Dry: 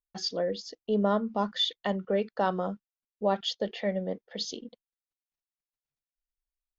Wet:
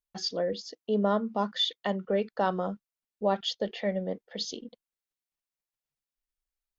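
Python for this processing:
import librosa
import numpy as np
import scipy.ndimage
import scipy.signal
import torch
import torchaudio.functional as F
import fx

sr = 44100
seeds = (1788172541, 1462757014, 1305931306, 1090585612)

y = fx.highpass(x, sr, hz=130.0, slope=12, at=(0.53, 2.06))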